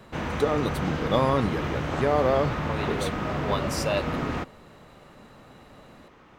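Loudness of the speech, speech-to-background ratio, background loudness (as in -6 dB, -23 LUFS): -27.5 LUFS, 2.5 dB, -30.0 LUFS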